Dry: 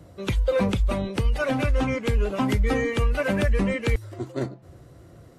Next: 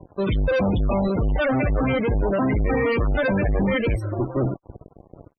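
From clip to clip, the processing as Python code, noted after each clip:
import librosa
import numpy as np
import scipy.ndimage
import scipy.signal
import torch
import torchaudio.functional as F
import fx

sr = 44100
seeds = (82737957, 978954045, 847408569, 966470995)

y = fx.fuzz(x, sr, gain_db=35.0, gate_db=-44.0)
y = fx.spec_topn(y, sr, count=32)
y = fx.env_lowpass(y, sr, base_hz=1100.0, full_db=-12.5)
y = y * 10.0 ** (-5.5 / 20.0)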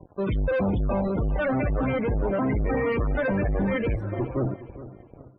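y = scipy.signal.sosfilt(scipy.signal.butter(2, 2300.0, 'lowpass', fs=sr, output='sos'), x)
y = fx.echo_feedback(y, sr, ms=414, feedback_pct=30, wet_db=-15)
y = y * 10.0 ** (-3.5 / 20.0)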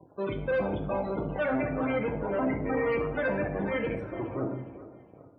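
y = fx.highpass(x, sr, hz=300.0, slope=6)
y = fx.room_shoebox(y, sr, seeds[0], volume_m3=220.0, walls='mixed', distance_m=0.59)
y = y * 10.0 ** (-3.0 / 20.0)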